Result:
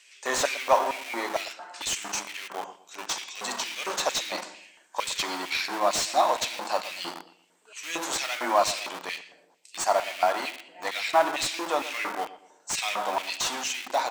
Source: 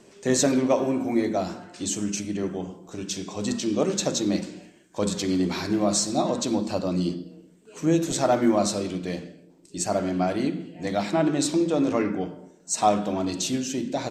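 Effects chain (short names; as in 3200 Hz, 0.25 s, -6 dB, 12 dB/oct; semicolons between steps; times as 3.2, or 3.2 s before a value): in parallel at -8.5 dB: Schmitt trigger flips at -28 dBFS; on the sum: LFO high-pass square 2.2 Hz 910–2400 Hz; darkening echo 0.117 s, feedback 38%, low-pass 1200 Hz, level -14.5 dB; slew limiter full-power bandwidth 250 Hz; gain +1.5 dB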